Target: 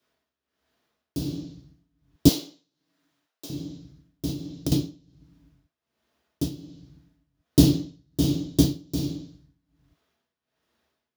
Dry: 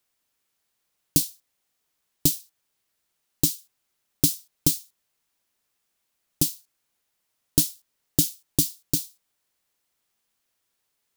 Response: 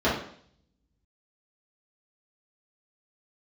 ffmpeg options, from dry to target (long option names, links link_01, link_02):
-filter_complex "[1:a]atrim=start_sample=2205[link_01];[0:a][link_01]afir=irnorm=-1:irlink=0,tremolo=f=1.3:d=0.84,asettb=1/sr,asplit=3[link_02][link_03][link_04];[link_02]atrim=end=2.294[link_05];[link_03]atrim=start=2.29:end=3.5,asetpts=PTS-STARTPTS,afade=type=in:duration=0.004:curve=qsin,afade=type=out:start_time=1.206:duration=0.004:curve=qsin,highpass=600[link_06];[link_04]atrim=start=3.496[link_07];[link_05][link_06]acrossfade=duration=0.004:curve1=hsin:curve2=qsin[link_08];[link_08][link_07]acrossfade=duration=0.004:curve1=qsin:curve2=hsin,asettb=1/sr,asplit=3[link_09][link_10][link_11];[link_09]atrim=end=4.314[link_12];[link_10]atrim=start=4.31:end=4.72,asetpts=PTS-STARTPTS,afade=type=in:duration=0.004:curve=qsin,afade=type=out:start_time=0.406:duration=0.004:curve=qsin,acompressor=threshold=-26dB:ratio=2.5[link_13];[link_11]atrim=start=4.716[link_14];[link_12][link_13]acrossfade=duration=0.004:curve1=hsin:curve2=qsin[link_15];[link_15][link_14]acrossfade=duration=0.004:curve1=qsin:curve2=hsin,volume=-6.5dB"